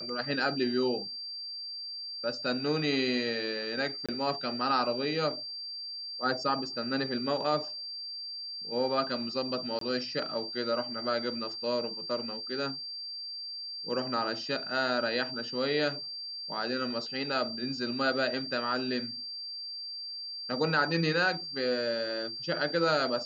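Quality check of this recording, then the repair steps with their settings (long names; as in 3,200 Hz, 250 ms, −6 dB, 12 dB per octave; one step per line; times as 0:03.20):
whistle 4,700 Hz −37 dBFS
0:04.06–0:04.09: drop-out 26 ms
0:09.79–0:09.81: drop-out 23 ms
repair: notch filter 4,700 Hz, Q 30
repair the gap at 0:04.06, 26 ms
repair the gap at 0:09.79, 23 ms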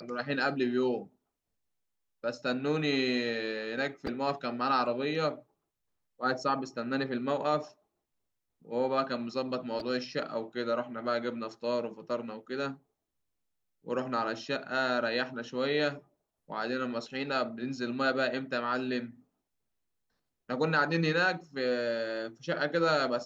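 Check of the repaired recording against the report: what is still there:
none of them is left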